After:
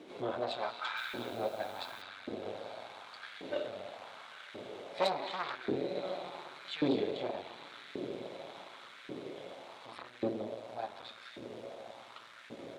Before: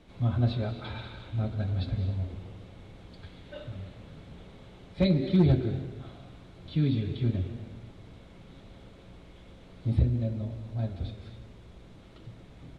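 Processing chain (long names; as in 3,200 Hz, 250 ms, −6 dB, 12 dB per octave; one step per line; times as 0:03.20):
in parallel at −1.5 dB: downward compressor, threshold −40 dBFS, peak gain reduction 21 dB
on the sum: feedback delay with all-pass diffusion 943 ms, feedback 65%, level −11 dB
tube saturation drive 26 dB, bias 0.75
auto-filter high-pass saw up 0.88 Hz 320–1,700 Hz
0:00.97–0:02.02: bit-depth reduction 10 bits, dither none
level +3 dB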